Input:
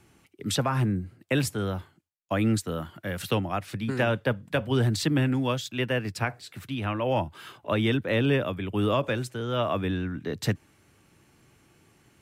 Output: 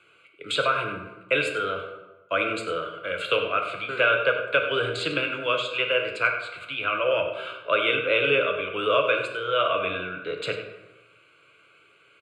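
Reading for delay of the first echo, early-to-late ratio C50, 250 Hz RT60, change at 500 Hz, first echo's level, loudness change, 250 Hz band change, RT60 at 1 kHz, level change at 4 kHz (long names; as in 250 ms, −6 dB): 96 ms, 6.0 dB, 1.1 s, +4.5 dB, −13.0 dB, +3.0 dB, −10.0 dB, 1.1 s, +6.0 dB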